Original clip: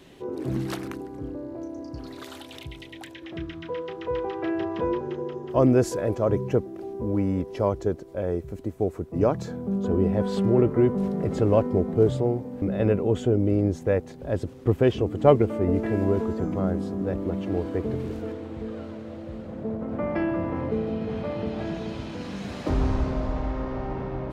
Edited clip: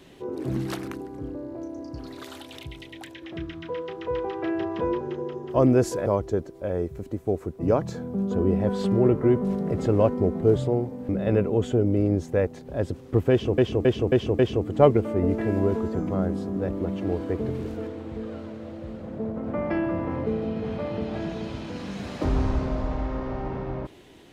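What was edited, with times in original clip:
6.06–7.59 s: delete
14.84–15.11 s: loop, 5 plays

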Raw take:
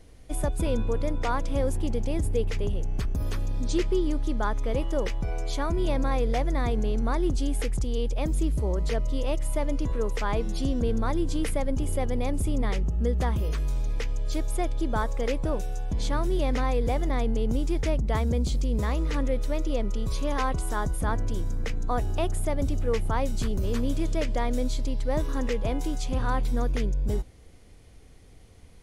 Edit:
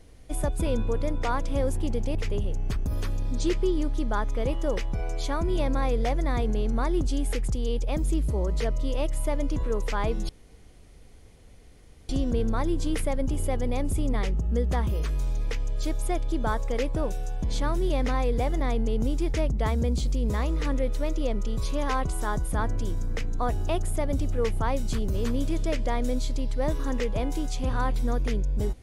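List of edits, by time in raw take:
2.15–2.44 s: delete
10.58 s: insert room tone 1.80 s

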